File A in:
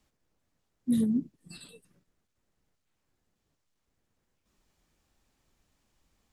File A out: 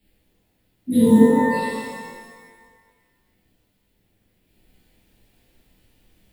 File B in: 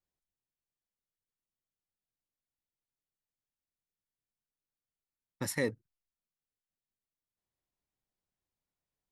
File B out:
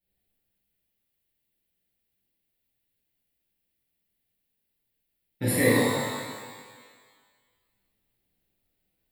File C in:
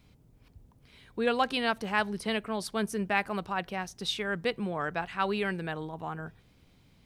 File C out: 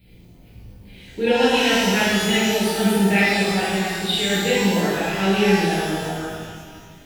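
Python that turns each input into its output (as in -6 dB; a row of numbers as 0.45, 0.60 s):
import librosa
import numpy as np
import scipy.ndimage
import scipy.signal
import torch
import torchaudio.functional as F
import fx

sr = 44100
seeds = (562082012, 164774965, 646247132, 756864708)

y = fx.high_shelf(x, sr, hz=11000.0, db=6.5)
y = fx.fixed_phaser(y, sr, hz=2700.0, stages=4)
y = fx.rev_shimmer(y, sr, seeds[0], rt60_s=1.6, semitones=12, shimmer_db=-8, drr_db=-10.5)
y = F.gain(torch.from_numpy(y), 3.0).numpy()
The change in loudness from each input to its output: +11.5, +10.5, +12.5 LU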